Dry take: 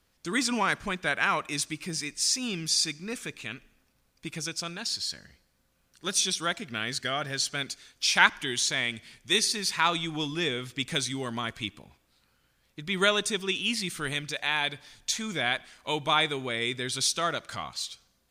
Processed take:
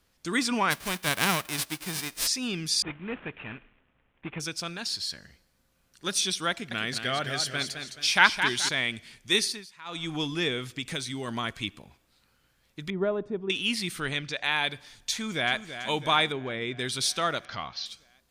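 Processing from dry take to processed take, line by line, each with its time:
0.7–2.26 spectral whitening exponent 0.3
2.82–4.4 CVSD 16 kbps
6.5–8.69 warbling echo 0.213 s, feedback 37%, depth 93 cents, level -7.5 dB
9.41–10.11 dip -22 dB, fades 0.26 s
10.65–11.28 compressor 2:1, threshold -32 dBFS
12.9–13.5 Chebyshev low-pass 600 Hz
14–14.44 LPF 5800 Hz
15.14–15.56 echo throw 0.33 s, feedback 65%, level -11 dB
16.32–16.79 tape spacing loss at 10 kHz 23 dB
17.45–17.86 elliptic low-pass 5700 Hz
whole clip: dynamic EQ 6900 Hz, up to -5 dB, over -45 dBFS, Q 2; gain +1 dB

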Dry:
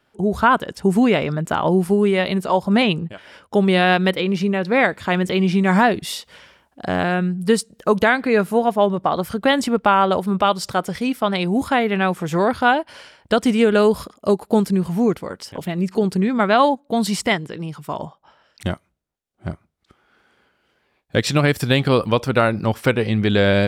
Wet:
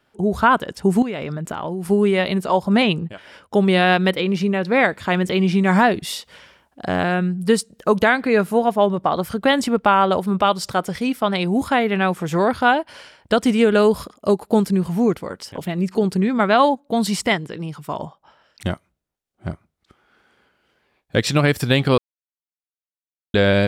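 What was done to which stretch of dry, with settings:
1.02–1.85 compressor 10:1, threshold -22 dBFS
21.98–23.34 mute

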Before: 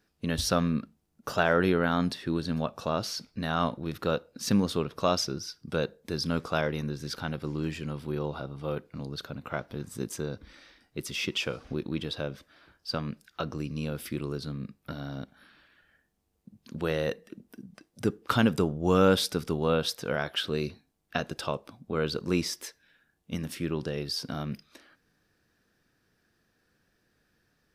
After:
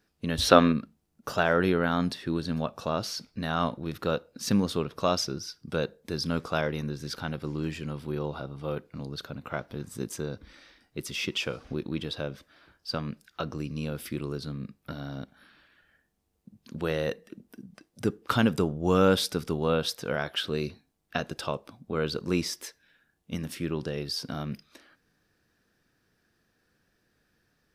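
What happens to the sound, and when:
0.41–0.72 spectral gain 250–4300 Hz +10 dB

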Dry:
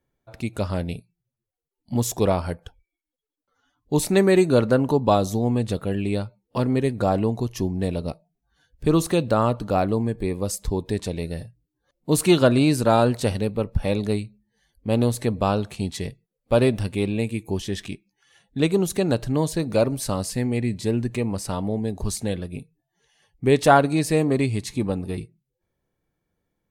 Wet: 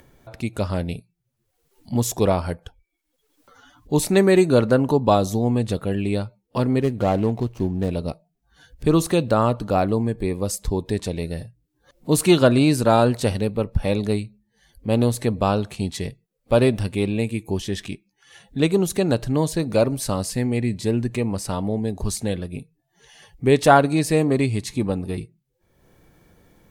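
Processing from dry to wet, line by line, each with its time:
6.81–7.9 median filter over 25 samples
whole clip: upward compressor, threshold -38 dBFS; gain +1.5 dB

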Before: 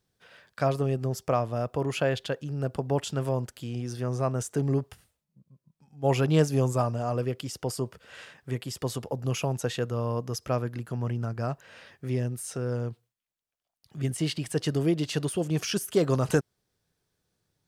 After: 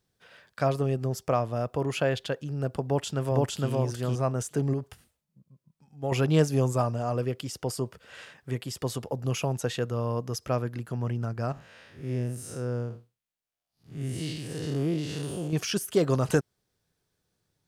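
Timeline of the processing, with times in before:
2.85–3.69 echo throw 0.46 s, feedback 15%, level 0 dB
4.73–6.12 compressor 2:1, threshold -29 dBFS
11.52–15.53 time blur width 0.153 s

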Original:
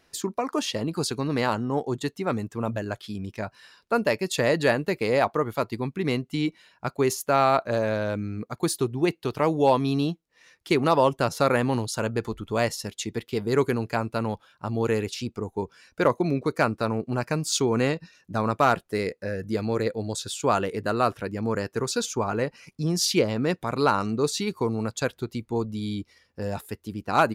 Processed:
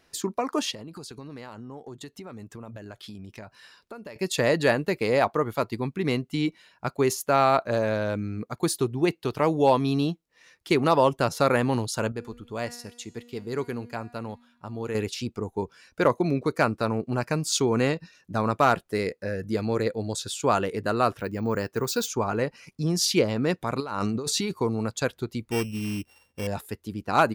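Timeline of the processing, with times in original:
0.71–4.16 compressor 8:1, threshold -37 dBFS
12.12–14.95 resonator 240 Hz, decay 1 s
21.18–22.08 careless resampling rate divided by 2×, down none, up hold
23.8–24.54 negative-ratio compressor -29 dBFS
25.51–26.47 sample sorter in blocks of 16 samples

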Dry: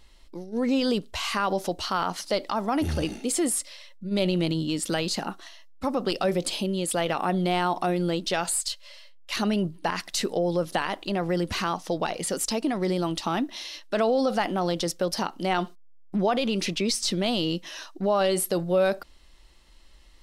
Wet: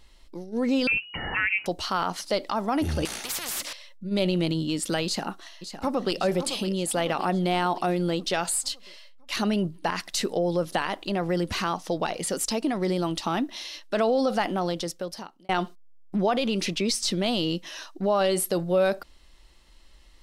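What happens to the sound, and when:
0.87–1.66 inverted band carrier 2900 Hz
3.05–3.73 spectral compressor 10:1
5.05–6.17 echo throw 0.56 s, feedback 55%, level -10 dB
14.52–15.49 fade out linear

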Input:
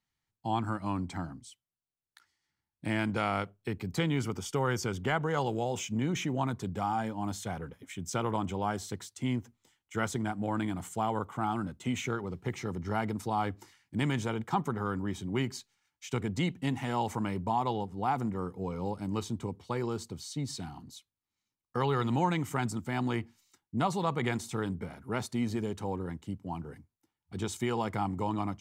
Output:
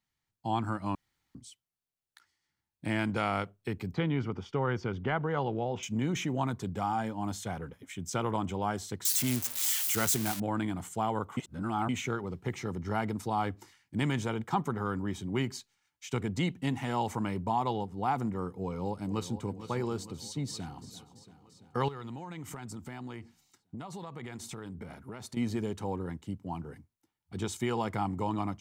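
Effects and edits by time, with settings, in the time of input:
0.95–1.35 room tone
3.94–5.83 air absorption 270 m
9.05–10.4 switching spikes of -21.5 dBFS
11.37–11.89 reverse
18.58–19.47 echo throw 0.46 s, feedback 60%, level -12 dB
20.47–20.89 echo throw 0.34 s, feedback 70%, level -14.5 dB
21.88–25.37 compressor 16:1, threshold -37 dBFS

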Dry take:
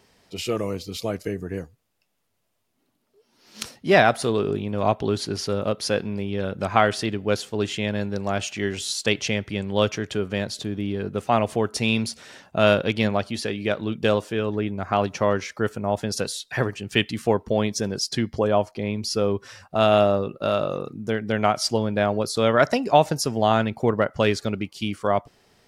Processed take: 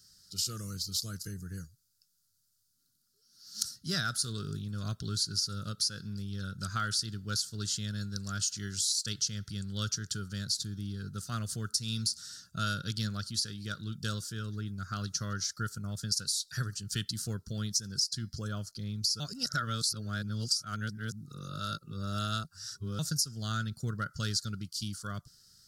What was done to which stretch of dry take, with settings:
15.48–16.48 transient shaper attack +2 dB, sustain -2 dB
19.2–22.99 reverse
whole clip: EQ curve 160 Hz 0 dB, 240 Hz -11 dB, 900 Hz -30 dB, 1400 Hz +1 dB, 2300 Hz -22 dB, 4600 Hz +12 dB, 9900 Hz +10 dB; compressor 12:1, threshold -22 dBFS; gain -5 dB

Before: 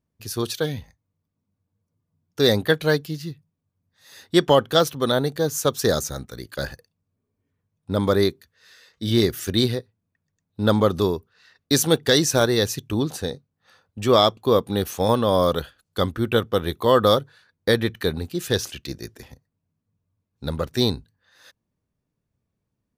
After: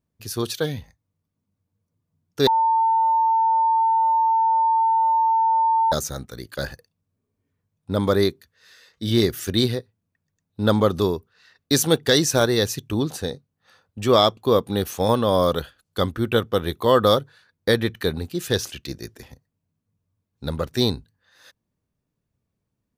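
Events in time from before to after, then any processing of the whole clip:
2.47–5.92 bleep 899 Hz -15.5 dBFS

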